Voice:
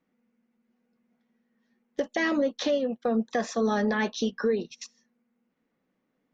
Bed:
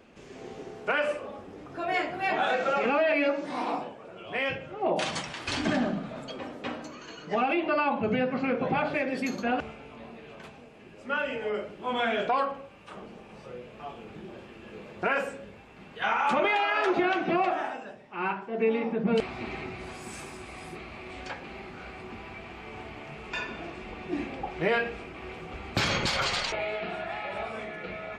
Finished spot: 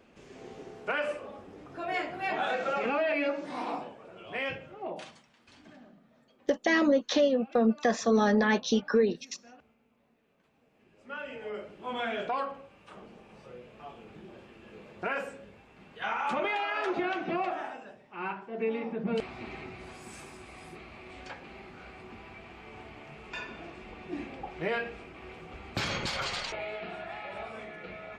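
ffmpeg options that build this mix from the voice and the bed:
-filter_complex "[0:a]adelay=4500,volume=1.5dB[a];[1:a]volume=17dB,afade=t=out:st=4.48:d=0.7:silence=0.0749894,afade=t=in:st=10.45:d=1.33:silence=0.0891251[b];[a][b]amix=inputs=2:normalize=0"

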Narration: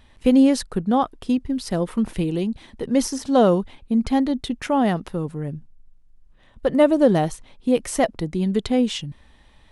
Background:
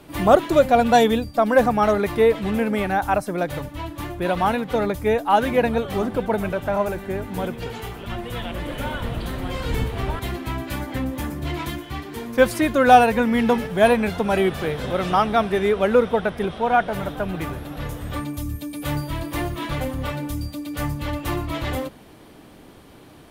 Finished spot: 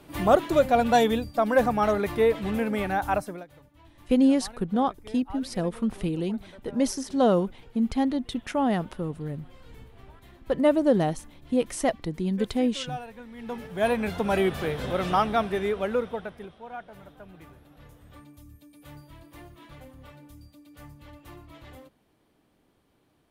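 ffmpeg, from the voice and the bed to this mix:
-filter_complex "[0:a]adelay=3850,volume=-5dB[a];[1:a]volume=15.5dB,afade=t=out:st=3.19:d=0.26:silence=0.105925,afade=t=in:st=13.36:d=0.91:silence=0.0944061,afade=t=out:st=15.14:d=1.43:silence=0.141254[b];[a][b]amix=inputs=2:normalize=0"

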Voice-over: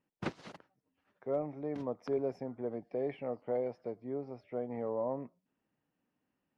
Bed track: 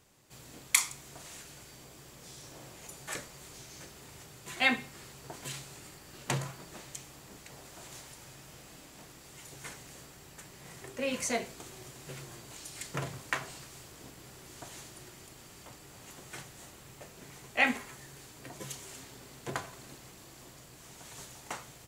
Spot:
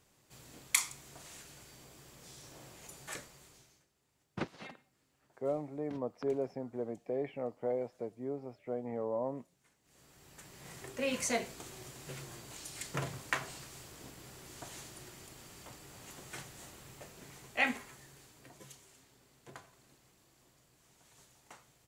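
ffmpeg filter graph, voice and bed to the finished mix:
-filter_complex "[0:a]adelay=4150,volume=-0.5dB[a];[1:a]volume=22dB,afade=t=out:st=3.07:d=0.77:silence=0.0707946,afade=t=in:st=9.82:d=0.88:silence=0.0501187,afade=t=out:st=16.8:d=2.13:silence=0.199526[b];[a][b]amix=inputs=2:normalize=0"

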